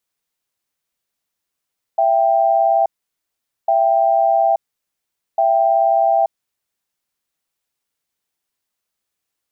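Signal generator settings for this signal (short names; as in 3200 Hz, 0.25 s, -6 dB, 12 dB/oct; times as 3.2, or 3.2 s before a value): cadence 667 Hz, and 786 Hz, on 0.88 s, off 0.82 s, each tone -14.5 dBFS 4.38 s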